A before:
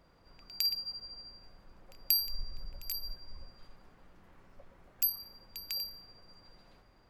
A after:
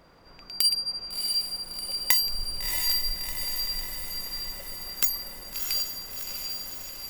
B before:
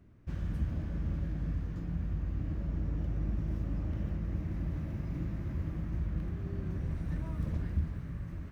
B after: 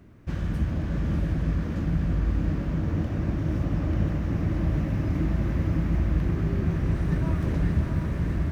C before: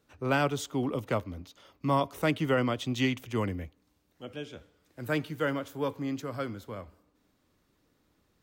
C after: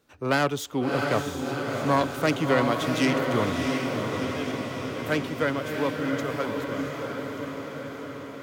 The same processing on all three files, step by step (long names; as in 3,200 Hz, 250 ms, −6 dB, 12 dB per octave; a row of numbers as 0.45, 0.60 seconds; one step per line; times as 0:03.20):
phase distortion by the signal itself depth 0.096 ms
low-shelf EQ 140 Hz −6.5 dB
on a send: feedback delay with all-pass diffusion 681 ms, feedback 67%, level −3.5 dB
on the sum: loudness normalisation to −27 LKFS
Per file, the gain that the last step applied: +10.0, +11.5, +4.5 decibels